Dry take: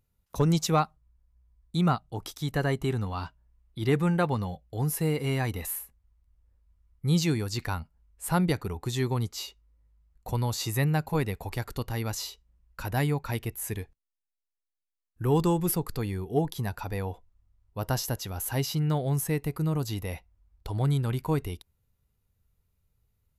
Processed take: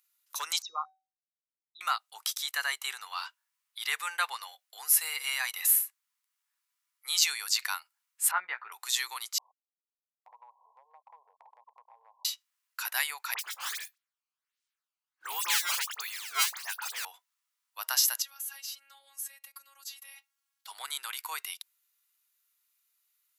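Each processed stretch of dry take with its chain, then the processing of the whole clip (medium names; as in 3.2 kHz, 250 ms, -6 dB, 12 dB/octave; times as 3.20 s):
0.62–1.81 s: resonances exaggerated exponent 3 + low-pass 2.4 kHz + feedback comb 760 Hz, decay 0.33 s
8.31–8.72 s: low-pass 2 kHz 24 dB/octave + doubling 16 ms -5 dB
9.38–12.25 s: send-on-delta sampling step -41 dBFS + brick-wall FIR band-pass 420–1100 Hz + compression 5:1, threshold -43 dBFS
13.34–17.05 s: decimation with a swept rate 14×, swing 160% 1.4 Hz + phase dispersion highs, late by 50 ms, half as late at 2.3 kHz
18.22–20.67 s: comb 4.3 ms, depth 83% + compression 3:1, threshold -47 dBFS + robot voice 275 Hz
whole clip: high-pass 1.1 kHz 24 dB/octave; treble shelf 2.4 kHz +10 dB; trim +1 dB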